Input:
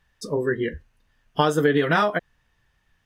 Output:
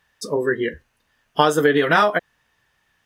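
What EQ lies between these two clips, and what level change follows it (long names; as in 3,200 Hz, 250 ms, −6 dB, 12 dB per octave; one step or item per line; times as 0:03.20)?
high-pass filter 600 Hz 6 dB per octave
spectral tilt −1.5 dB per octave
high-shelf EQ 6,700 Hz +7.5 dB
+6.0 dB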